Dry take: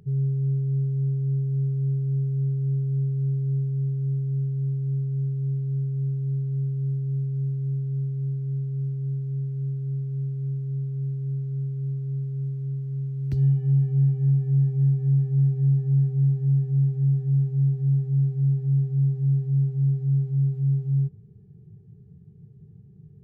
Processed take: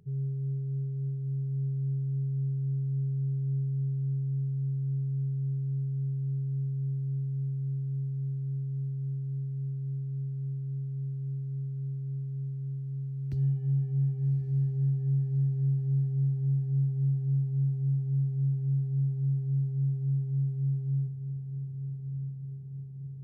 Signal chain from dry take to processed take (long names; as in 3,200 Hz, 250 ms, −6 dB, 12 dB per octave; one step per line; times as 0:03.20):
feedback delay with all-pass diffusion 1,172 ms, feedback 60%, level −9 dB
level −8 dB